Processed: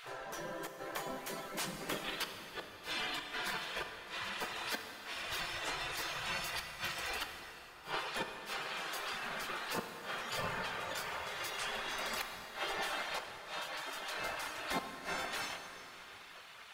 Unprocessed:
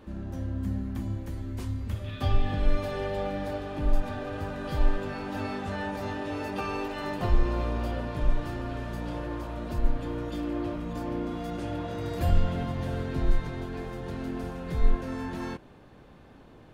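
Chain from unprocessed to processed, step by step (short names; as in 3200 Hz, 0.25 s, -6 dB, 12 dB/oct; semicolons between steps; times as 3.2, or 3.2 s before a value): flipped gate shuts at -20 dBFS, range -28 dB; reverb removal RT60 0.79 s; in parallel at +1 dB: compressor, threshold -44 dBFS, peak gain reduction 17 dB; on the sum: spectral gate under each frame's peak -20 dB weak; plate-style reverb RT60 3.5 s, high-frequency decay 0.75×, DRR 5 dB; gain +8 dB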